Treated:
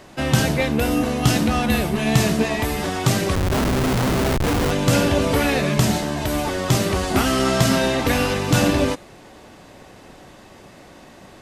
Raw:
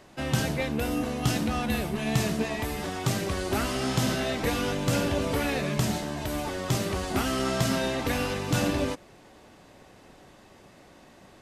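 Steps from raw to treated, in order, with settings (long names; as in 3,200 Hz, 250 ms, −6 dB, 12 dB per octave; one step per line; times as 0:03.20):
hum removal 407.5 Hz, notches 35
0:03.35–0:04.71: comparator with hysteresis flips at −26 dBFS
level +8.5 dB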